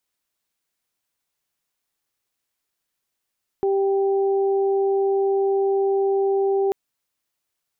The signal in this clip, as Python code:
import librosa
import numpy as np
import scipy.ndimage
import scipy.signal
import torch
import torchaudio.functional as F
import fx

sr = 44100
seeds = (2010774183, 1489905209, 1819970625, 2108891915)

y = fx.additive_steady(sr, length_s=3.09, hz=392.0, level_db=-17.5, upper_db=(-10.5,))